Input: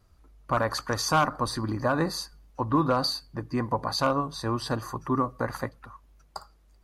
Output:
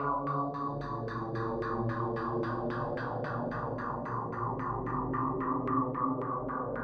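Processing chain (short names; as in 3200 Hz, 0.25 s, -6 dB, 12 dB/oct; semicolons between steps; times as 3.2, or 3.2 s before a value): compressor 6:1, threshold -32 dBFS, peak gain reduction 13.5 dB; Paulstretch 5.8×, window 0.50 s, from 4.17; requantised 10-bit, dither none; flutter echo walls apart 7.2 m, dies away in 0.4 s; LFO low-pass saw down 3.7 Hz 530–2000 Hz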